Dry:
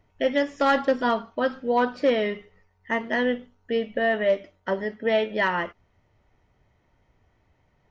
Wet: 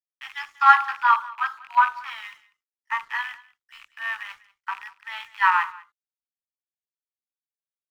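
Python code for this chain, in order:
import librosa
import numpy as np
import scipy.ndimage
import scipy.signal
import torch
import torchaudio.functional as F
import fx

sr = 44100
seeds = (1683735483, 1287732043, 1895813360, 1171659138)

p1 = fx.rattle_buzz(x, sr, strikes_db=-35.0, level_db=-23.0)
p2 = scipy.signal.sosfilt(scipy.signal.butter(16, 820.0, 'highpass', fs=sr, output='sos'), p1)
p3 = fx.peak_eq(p2, sr, hz=1200.0, db=14.0, octaves=0.96)
p4 = np.sign(p3) * np.maximum(np.abs(p3) - 10.0 ** (-49.5 / 20.0), 0.0)
p5 = p4 + fx.echo_single(p4, sr, ms=194, db=-16.5, dry=0)
p6 = fx.band_widen(p5, sr, depth_pct=70)
y = p6 * 10.0 ** (-5.5 / 20.0)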